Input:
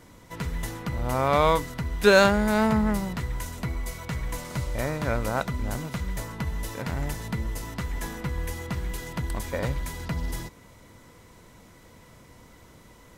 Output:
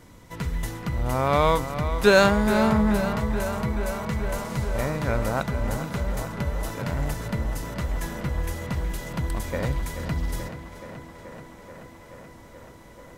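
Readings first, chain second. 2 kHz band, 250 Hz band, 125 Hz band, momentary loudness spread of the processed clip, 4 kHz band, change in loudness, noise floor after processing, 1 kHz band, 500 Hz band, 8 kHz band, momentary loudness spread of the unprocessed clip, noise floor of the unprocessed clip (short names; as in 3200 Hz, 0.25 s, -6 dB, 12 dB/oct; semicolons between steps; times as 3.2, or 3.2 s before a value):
+0.5 dB, +2.5 dB, +2.5 dB, 21 LU, +0.5 dB, +1.5 dB, -47 dBFS, +1.0 dB, +1.5 dB, 0.0 dB, 13 LU, -52 dBFS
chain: low shelf 170 Hz +3.5 dB; tape echo 0.43 s, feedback 88%, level -10 dB, low-pass 4100 Hz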